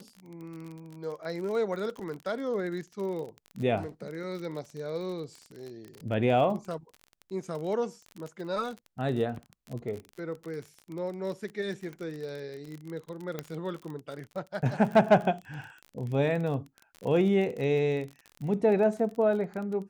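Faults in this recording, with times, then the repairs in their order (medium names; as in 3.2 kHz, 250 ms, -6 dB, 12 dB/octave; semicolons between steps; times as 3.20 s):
crackle 34 per s -35 dBFS
13.39 s: pop -19 dBFS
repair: de-click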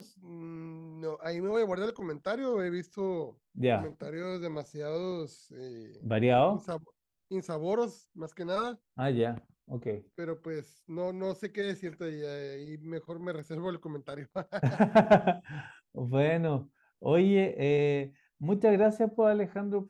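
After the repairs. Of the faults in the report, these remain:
13.39 s: pop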